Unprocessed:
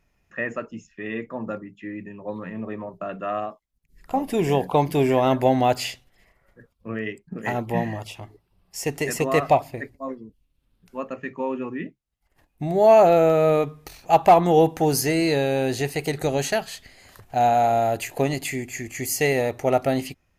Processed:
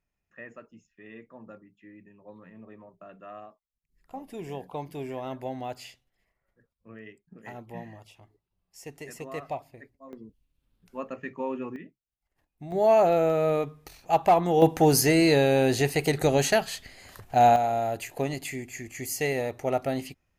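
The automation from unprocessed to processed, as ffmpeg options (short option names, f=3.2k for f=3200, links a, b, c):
-af "asetnsamples=n=441:p=0,asendcmd='10.13 volume volume -4.5dB;11.76 volume volume -13dB;12.72 volume volume -6dB;14.62 volume volume 1dB;17.56 volume volume -6.5dB',volume=-16dB"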